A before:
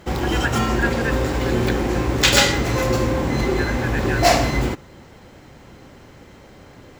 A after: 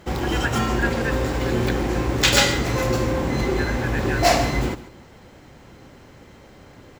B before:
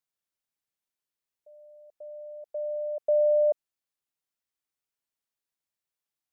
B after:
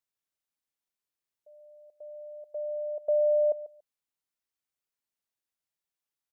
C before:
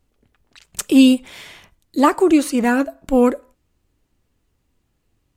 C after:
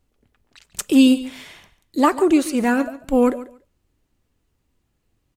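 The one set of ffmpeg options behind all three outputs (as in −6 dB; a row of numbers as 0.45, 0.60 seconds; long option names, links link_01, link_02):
-af "aecho=1:1:142|284:0.158|0.0254,volume=-2dB"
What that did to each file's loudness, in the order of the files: −2.0, −2.0, −1.5 LU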